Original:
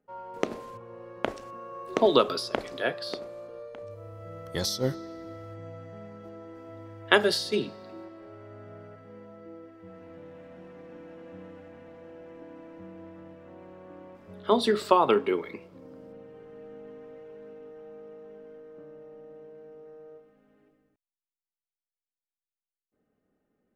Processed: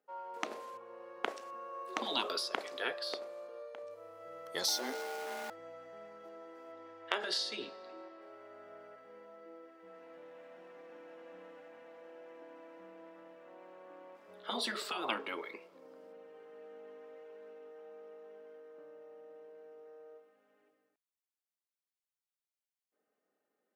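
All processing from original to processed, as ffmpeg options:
ffmpeg -i in.wav -filter_complex "[0:a]asettb=1/sr,asplit=3[link_01][link_02][link_03];[link_01]atrim=end=4.684[link_04];[link_02]atrim=start=4.68:end=5.5,asetpts=PTS-STARTPTS,afade=type=in:duration=0.004:curve=qsin,afade=type=out:start_time=0.816:duration=0.004:curve=qsin,aeval=exprs='val(0)+0.5*0.0168*sgn(val(0))':channel_layout=same,aeval=exprs='val(0)+0.0224*sin(2*PI*740*n/s)':channel_layout=same,afreqshift=120[link_05];[link_03]atrim=start=5.496[link_06];[link_04][link_05]acrossfade=duration=0.004:curve1=hsin:curve2=qsin[link_07];[link_07][link_06]acrossfade=duration=0.004:curve1=qsin:curve2=hsin,asettb=1/sr,asplit=3[link_08][link_09][link_10];[link_08]atrim=end=6.724[link_11];[link_09]atrim=start=6.72:end=8.21,asetpts=PTS-STARTPTS,afade=type=in:duration=0.004:curve=qsin,afade=type=out:start_time=1.486:duration=0.004:curve=qsin,lowpass=6600,acompressor=threshold=-25dB:ratio=5:attack=3.2:release=140:knee=1:detection=peak,asplit=2[link_12][link_13];[link_13]adelay=22,volume=-11dB[link_14];[link_12][link_14]amix=inputs=2:normalize=0,atrim=end_sample=65709[link_15];[link_10]atrim=start=8.206[link_16];[link_11][link_15]acrossfade=duration=0.004:curve1=hsin:curve2=qsin[link_17];[link_17][link_16]acrossfade=duration=0.004:curve1=qsin:curve2=hsin,highpass=500,afftfilt=real='re*lt(hypot(re,im),0.178)':imag='im*lt(hypot(re,im),0.178)':win_size=1024:overlap=0.75,volume=-2.5dB" out.wav

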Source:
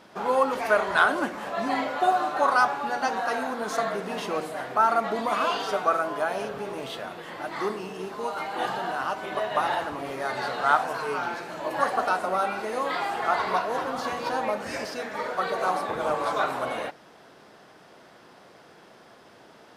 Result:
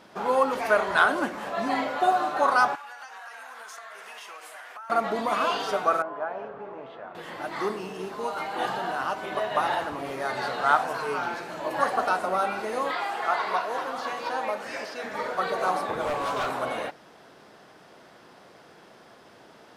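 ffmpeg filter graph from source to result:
ffmpeg -i in.wav -filter_complex "[0:a]asettb=1/sr,asplit=3[link_01][link_02][link_03];[link_01]atrim=end=2.754[link_04];[link_02]atrim=start=2.75:end=4.9,asetpts=PTS-STARTPTS,afade=type=in:duration=0.004:curve=qsin,afade=type=out:start_time=2.146:duration=0.004:curve=qsin,highpass=1300,equalizer=frequency=4100:width_type=o:width=0.4:gain=-6.5,acompressor=threshold=-38dB:ratio=12:attack=3.2:release=140:knee=1:detection=peak[link_05];[link_03]atrim=start=4.896[link_06];[link_04][link_05]acrossfade=duration=0.004:curve1=hsin:curve2=qsin[link_07];[link_07][link_06]acrossfade=duration=0.004:curve1=qsin:curve2=hsin,asettb=1/sr,asplit=3[link_08][link_09][link_10];[link_08]atrim=end=6.024[link_11];[link_09]atrim=start=6.02:end=7.15,asetpts=PTS-STARTPTS,afade=type=in:duration=0.004:curve=qsin,afade=type=out:start_time=1.126:duration=0.004:curve=qsin,lowpass=1200,lowshelf=frequency=440:gain=-11.5[link_12];[link_10]atrim=start=7.146[link_13];[link_11][link_12]acrossfade=duration=0.004:curve1=hsin:curve2=qsin[link_14];[link_14][link_13]acrossfade=duration=0.004:curve1=qsin:curve2=hsin,asettb=1/sr,asplit=3[link_15][link_16][link_17];[link_15]atrim=end=12.914[link_18];[link_16]atrim=start=12.91:end=15.04,asetpts=PTS-STARTPTS,afade=type=in:duration=0.004:curve=qsin,afade=type=out:start_time=2.126:duration=0.004:curve=qsin,highpass=frequency=500:poles=1,acrossover=split=4500[link_19][link_20];[link_20]acompressor=threshold=-49dB:ratio=4:attack=1:release=60[link_21];[link_19][link_21]amix=inputs=2:normalize=0[link_22];[link_17]atrim=start=15.036[link_23];[link_18][link_22]acrossfade=duration=0.004:curve1=hsin:curve2=qsin[link_24];[link_24][link_23]acrossfade=duration=0.004:curve1=qsin:curve2=hsin,asettb=1/sr,asplit=3[link_25][link_26][link_27];[link_25]atrim=end=16.054[link_28];[link_26]atrim=start=16.05:end=16.5,asetpts=PTS-STARTPTS,afade=type=in:duration=0.004:curve=qsin,afade=type=out:start_time=0.446:duration=0.004:curve=qsin,afreqshift=-18,asplit=2[link_29][link_30];[link_30]adelay=15,volume=-7.5dB[link_31];[link_29][link_31]amix=inputs=2:normalize=0,atrim=end_sample=19845,asoftclip=type=hard:threshold=-25dB[link_32];[link_27]atrim=start=16.496[link_33];[link_28][link_32]acrossfade=duration=0.004:curve1=hsin:curve2=qsin[link_34];[link_34][link_33]acrossfade=duration=0.004:curve1=qsin:curve2=hsin" out.wav

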